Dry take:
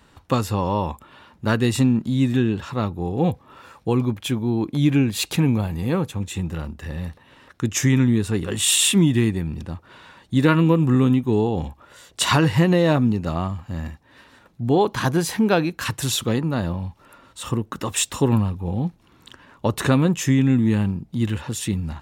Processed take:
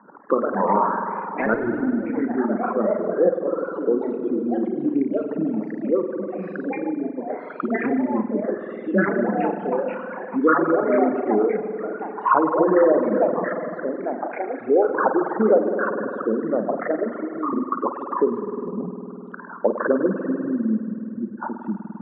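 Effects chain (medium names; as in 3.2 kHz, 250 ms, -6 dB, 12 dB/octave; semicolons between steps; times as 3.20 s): resonances exaggerated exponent 3; Chebyshev band-pass 200–1500 Hz, order 5; 1.53–2.05 s: transient shaper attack -12 dB, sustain +5 dB; peaking EQ 260 Hz -13.5 dB 0.92 oct; spring tank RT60 2.2 s, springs 50 ms, chirp 50 ms, DRR 1.5 dB; ever faster or slower copies 165 ms, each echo +3 st, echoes 3, each echo -6 dB; 11.52–12.69 s: distance through air 260 m; reverb removal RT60 0.62 s; three bands compressed up and down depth 40%; trim +7.5 dB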